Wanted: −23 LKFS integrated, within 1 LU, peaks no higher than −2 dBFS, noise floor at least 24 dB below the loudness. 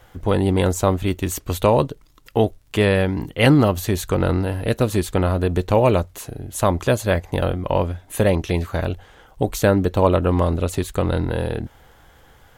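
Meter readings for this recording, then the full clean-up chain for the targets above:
crackle rate 36 per second; integrated loudness −20.5 LKFS; sample peak −1.0 dBFS; target loudness −23.0 LKFS
→ click removal
level −2.5 dB

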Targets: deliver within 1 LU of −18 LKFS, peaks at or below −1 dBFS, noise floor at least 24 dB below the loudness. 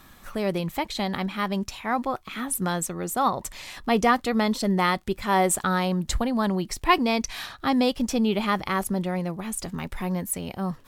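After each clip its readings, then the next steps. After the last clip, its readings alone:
crackle rate 29 per second; integrated loudness −25.5 LKFS; sample peak −6.0 dBFS; target loudness −18.0 LKFS
→ click removal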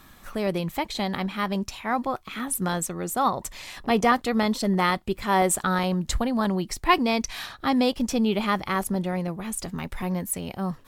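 crackle rate 0.37 per second; integrated loudness −25.5 LKFS; sample peak −6.0 dBFS; target loudness −18.0 LKFS
→ level +7.5 dB
brickwall limiter −1 dBFS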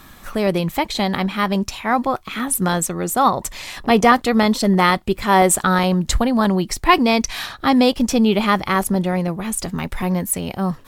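integrated loudness −18.5 LKFS; sample peak −1.0 dBFS; background noise floor −44 dBFS

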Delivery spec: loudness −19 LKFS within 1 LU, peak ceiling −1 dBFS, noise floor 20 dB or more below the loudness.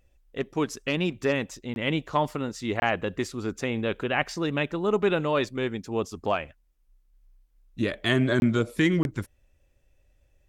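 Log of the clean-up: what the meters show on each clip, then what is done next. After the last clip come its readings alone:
number of dropouts 4; longest dropout 21 ms; integrated loudness −27.5 LKFS; sample peak −7.5 dBFS; target loudness −19.0 LKFS
→ repair the gap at 0:01.74/0:02.80/0:08.40/0:09.03, 21 ms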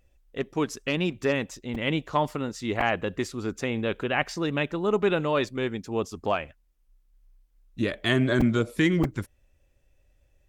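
number of dropouts 0; integrated loudness −27.0 LKFS; sample peak −7.5 dBFS; target loudness −19.0 LKFS
→ level +8 dB
brickwall limiter −1 dBFS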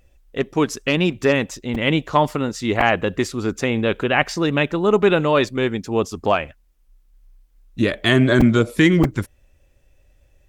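integrated loudness −19.5 LKFS; sample peak −1.0 dBFS; background noise floor −58 dBFS

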